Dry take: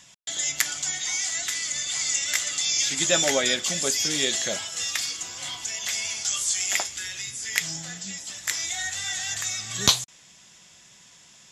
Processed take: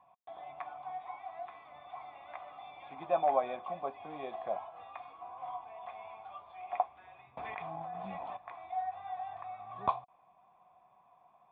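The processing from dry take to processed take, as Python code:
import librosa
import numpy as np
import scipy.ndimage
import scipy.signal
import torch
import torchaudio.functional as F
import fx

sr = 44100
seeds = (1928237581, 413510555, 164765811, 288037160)

y = fx.formant_cascade(x, sr, vowel='a')
y = fx.env_flatten(y, sr, amount_pct=100, at=(7.37, 8.37))
y = F.gain(torch.from_numpy(y), 10.0).numpy()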